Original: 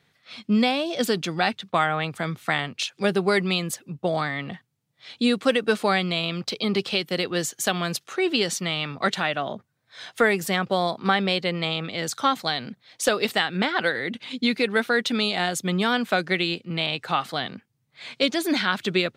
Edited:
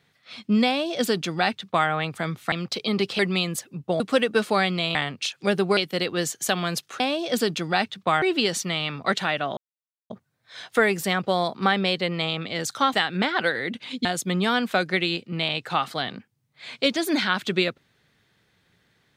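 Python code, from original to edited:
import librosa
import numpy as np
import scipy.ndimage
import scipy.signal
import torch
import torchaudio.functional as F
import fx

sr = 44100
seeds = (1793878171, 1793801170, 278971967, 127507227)

y = fx.edit(x, sr, fx.duplicate(start_s=0.67, length_s=1.22, to_s=8.18),
    fx.swap(start_s=2.52, length_s=0.82, other_s=6.28, other_length_s=0.67),
    fx.cut(start_s=4.15, length_s=1.18),
    fx.insert_silence(at_s=9.53, length_s=0.53),
    fx.cut(start_s=12.37, length_s=0.97),
    fx.cut(start_s=14.45, length_s=0.98), tone=tone)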